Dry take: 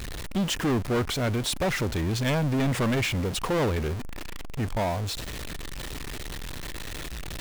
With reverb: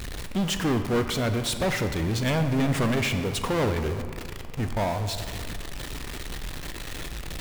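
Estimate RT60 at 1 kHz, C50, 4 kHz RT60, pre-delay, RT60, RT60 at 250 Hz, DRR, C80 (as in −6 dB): 2.0 s, 8.5 dB, 1.2 s, 9 ms, 2.0 s, 2.2 s, 7.0 dB, 10.0 dB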